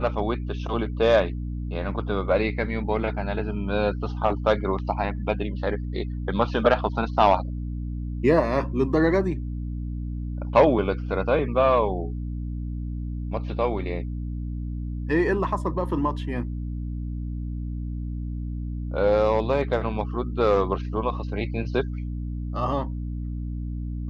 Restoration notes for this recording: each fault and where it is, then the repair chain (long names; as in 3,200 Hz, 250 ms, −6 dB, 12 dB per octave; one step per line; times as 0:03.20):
mains hum 60 Hz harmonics 5 −30 dBFS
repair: hum removal 60 Hz, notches 5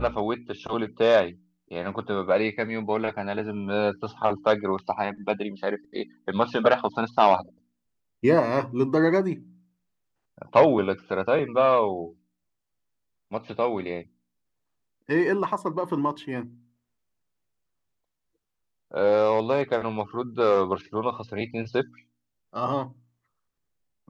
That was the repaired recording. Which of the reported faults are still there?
none of them is left